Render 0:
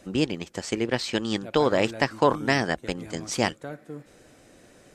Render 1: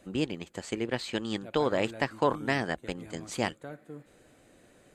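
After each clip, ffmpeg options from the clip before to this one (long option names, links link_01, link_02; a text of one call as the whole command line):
ffmpeg -i in.wav -af "equalizer=frequency=5500:width_type=o:width=0.24:gain=-11.5,volume=-5.5dB" out.wav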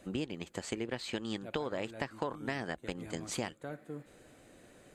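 ffmpeg -i in.wav -af "acompressor=threshold=-34dB:ratio=6,volume=1dB" out.wav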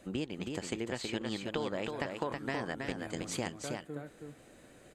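ffmpeg -i in.wav -af "aecho=1:1:322:0.596" out.wav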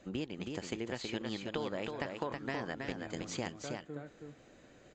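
ffmpeg -i in.wav -af "volume=-2dB" -ar 16000 -c:a aac -b:a 64k out.aac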